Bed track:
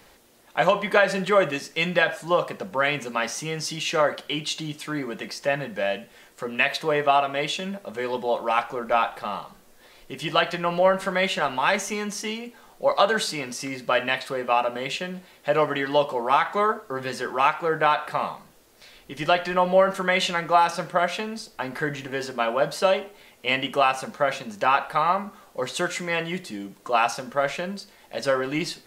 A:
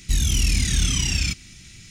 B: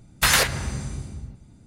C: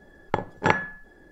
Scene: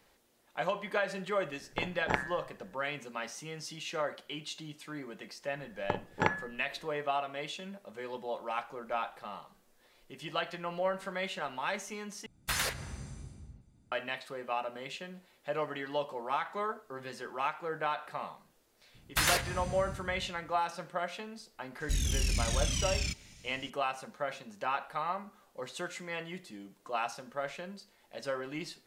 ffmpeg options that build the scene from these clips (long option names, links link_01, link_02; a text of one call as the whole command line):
ffmpeg -i bed.wav -i cue0.wav -i cue1.wav -i cue2.wav -filter_complex "[3:a]asplit=2[link_01][link_02];[2:a]asplit=2[link_03][link_04];[0:a]volume=-13dB[link_05];[link_01]tremolo=f=130:d=0.974[link_06];[link_05]asplit=2[link_07][link_08];[link_07]atrim=end=12.264[link_09];[link_03]atrim=end=1.66,asetpts=PTS-STARTPTS,volume=-14dB[link_10];[link_08]atrim=start=13.916[link_11];[link_06]atrim=end=1.31,asetpts=PTS-STARTPTS,volume=-5dB,afade=type=in:duration=0.004:curve=hsin,afade=type=out:start_time=1.306:duration=0.004:curve=hsin,adelay=1440[link_12];[link_02]atrim=end=1.31,asetpts=PTS-STARTPTS,volume=-8dB,afade=type=in:duration=0.004:curve=hsin,afade=type=out:start_time=1.306:duration=0.004:curve=hsin,adelay=5560[link_13];[link_04]atrim=end=1.66,asetpts=PTS-STARTPTS,volume=-10dB,afade=type=in:duration=0.004:curve=hsin,afade=type=out:start_time=1.656:duration=0.004:curve=hsin,adelay=18940[link_14];[1:a]atrim=end=1.9,asetpts=PTS-STARTPTS,volume=-10.5dB,afade=type=in:duration=0.004:curve=hsin,afade=type=out:start_time=1.896:duration=0.004:curve=hsin,adelay=961380S[link_15];[link_09][link_10]acrossfade=duration=0.004:curve1=hsin:curve2=hsin[link_16];[link_16][link_11]acrossfade=duration=0.004:curve1=hsin:curve2=hsin[link_17];[link_17][link_12][link_13][link_14][link_15]amix=inputs=5:normalize=0" out.wav